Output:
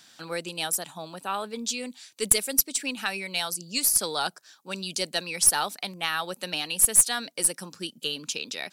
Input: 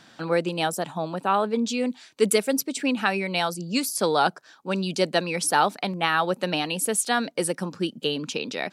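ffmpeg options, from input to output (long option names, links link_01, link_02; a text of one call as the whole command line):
ffmpeg -i in.wav -af "crystalizer=i=7:c=0,aeval=exprs='(tanh(0.398*val(0)+0.35)-tanh(0.35))/0.398':channel_layout=same,volume=-10.5dB" out.wav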